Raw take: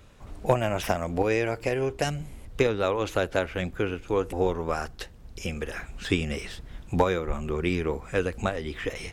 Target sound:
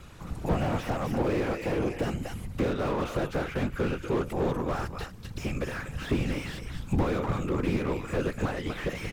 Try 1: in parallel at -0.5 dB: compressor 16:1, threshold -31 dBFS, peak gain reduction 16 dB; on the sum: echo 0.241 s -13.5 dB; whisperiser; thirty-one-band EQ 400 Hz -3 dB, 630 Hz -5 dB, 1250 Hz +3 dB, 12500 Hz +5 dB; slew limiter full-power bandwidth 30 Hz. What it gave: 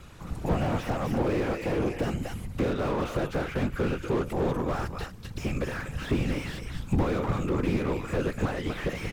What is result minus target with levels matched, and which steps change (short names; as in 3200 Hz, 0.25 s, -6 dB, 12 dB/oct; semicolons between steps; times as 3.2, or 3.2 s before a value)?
compressor: peak gain reduction -6.5 dB
change: compressor 16:1, threshold -38 dBFS, peak gain reduction 22.5 dB